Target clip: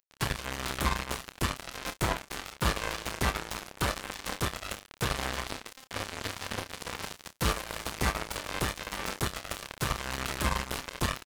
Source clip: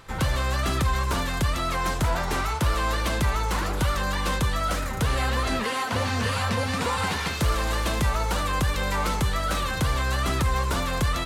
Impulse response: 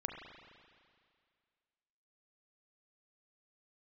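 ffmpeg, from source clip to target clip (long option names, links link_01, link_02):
-filter_complex "[0:a]acompressor=mode=upward:threshold=-29dB:ratio=2.5,acrusher=bits=2:mix=0:aa=0.5,asplit=2[link_01][link_02];[link_02]adelay=30,volume=-10.5dB[link_03];[link_01][link_03]amix=inputs=2:normalize=0"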